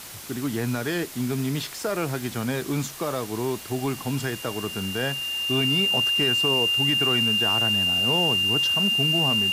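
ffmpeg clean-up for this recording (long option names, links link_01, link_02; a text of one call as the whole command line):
ffmpeg -i in.wav -af "adeclick=threshold=4,bandreject=frequency=2800:width=30,afwtdn=0.011" out.wav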